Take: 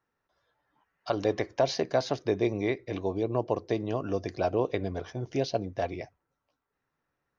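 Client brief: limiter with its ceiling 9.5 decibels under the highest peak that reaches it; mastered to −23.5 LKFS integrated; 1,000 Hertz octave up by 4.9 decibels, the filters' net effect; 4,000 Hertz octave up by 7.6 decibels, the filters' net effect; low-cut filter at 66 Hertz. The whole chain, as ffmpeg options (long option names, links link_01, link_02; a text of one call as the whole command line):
ffmpeg -i in.wav -af "highpass=66,equalizer=frequency=1000:width_type=o:gain=7,equalizer=frequency=4000:width_type=o:gain=8.5,volume=8dB,alimiter=limit=-10.5dB:level=0:latency=1" out.wav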